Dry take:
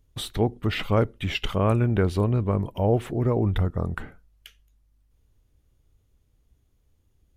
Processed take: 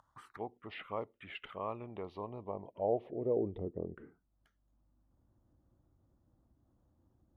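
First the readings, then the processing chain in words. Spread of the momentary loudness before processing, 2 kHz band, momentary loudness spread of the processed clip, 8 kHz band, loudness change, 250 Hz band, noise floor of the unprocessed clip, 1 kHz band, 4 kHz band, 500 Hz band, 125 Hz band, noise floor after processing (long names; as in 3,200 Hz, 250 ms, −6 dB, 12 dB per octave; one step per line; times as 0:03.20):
7 LU, −17.0 dB, 12 LU, can't be measured, −15.0 dB, −17.0 dB, −67 dBFS, −11.5 dB, below −20 dB, −10.5 dB, −25.5 dB, −78 dBFS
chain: upward compression, threshold −29 dBFS
phaser swept by the level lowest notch 380 Hz, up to 1,500 Hz, full sweep at −20.5 dBFS
band-pass filter sweep 1,100 Hz → 390 Hz, 0:02.09–0:03.66
level −2.5 dB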